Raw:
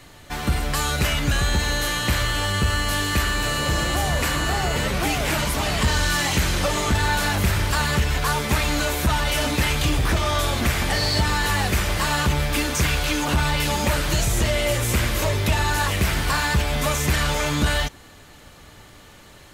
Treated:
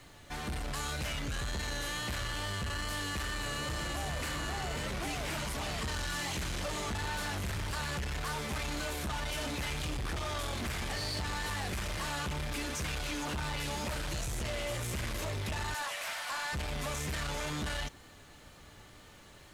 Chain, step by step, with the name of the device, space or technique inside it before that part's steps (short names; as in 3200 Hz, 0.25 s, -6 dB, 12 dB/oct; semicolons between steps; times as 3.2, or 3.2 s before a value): 15.74–16.53 elliptic high-pass 570 Hz; compact cassette (soft clip -25 dBFS, distortion -9 dB; LPF 12000 Hz 12 dB/oct; wow and flutter 29 cents; white noise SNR 38 dB); gain -8 dB